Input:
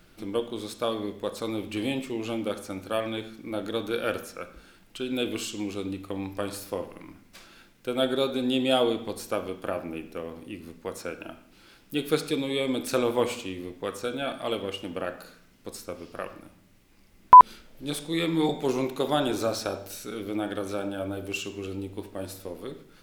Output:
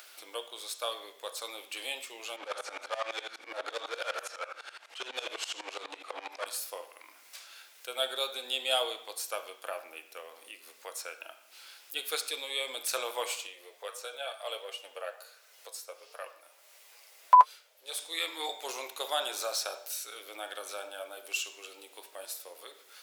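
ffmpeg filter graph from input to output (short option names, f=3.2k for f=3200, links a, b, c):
-filter_complex "[0:a]asettb=1/sr,asplit=3[a][b][c];[a]atrim=end=2.364[d];[b]atrim=start=2.36:end=6.46,asetpts=PTS-STARTPTS,afade=t=in:d=0.004:c=qsin,afade=t=out:st=4.096:d=0.004:c=qsin,asplit=2[e][f];[f]highpass=f=720:p=1,volume=31dB,asoftclip=type=tanh:threshold=-12.5dB[g];[e][g]amix=inputs=2:normalize=0,lowpass=f=1.1k:p=1,volume=-6dB,lowpass=9.7k,aeval=exprs='val(0)*pow(10,-20*if(lt(mod(-12*n/s,1),2*abs(-12)/1000),1-mod(-12*n/s,1)/(2*abs(-12)/1000),(mod(-12*n/s,1)-2*abs(-12)/1000)/(1-2*abs(-12)/1000))/20)':c=same[h];[c]atrim=start=6.456[i];[d][h]acrossfade=d=0.004:c1=hsin:c2=qsin[j];[j][i]acrossfade=d=0.004:c1=qsin:c2=hsin,asettb=1/sr,asplit=3[k][l][m];[k]atrim=end=13.474[n];[l]atrim=start=13.47:end=17.99,asetpts=PTS-STARTPTS,afade=t=in:d=0.004:c=qsin,afade=t=out:st=4.516:d=0.004:c=qsin,highpass=f=470:t=q:w=1.8,flanger=delay=6.3:depth=4:regen=48:speed=1.5:shape=triangular[o];[m]atrim=start=17.986[p];[n][o]acrossfade=d=0.004:c1=hsin:c2=qsin[q];[q][p]acrossfade=d=0.004:c1=qsin:c2=hsin,highpass=f=570:w=0.5412,highpass=f=570:w=1.3066,highshelf=f=2.7k:g=10.5,acompressor=mode=upward:threshold=-38dB:ratio=2.5,volume=-6dB"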